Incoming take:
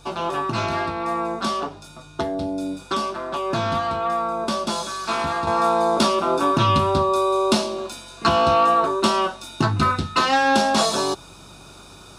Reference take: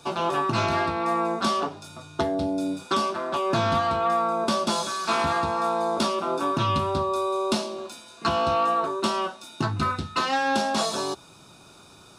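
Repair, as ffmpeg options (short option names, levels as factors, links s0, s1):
-af "bandreject=f=46.8:t=h:w=4,bandreject=f=93.6:t=h:w=4,bandreject=f=140.4:t=h:w=4,asetnsamples=n=441:p=0,asendcmd='5.47 volume volume -6dB',volume=1"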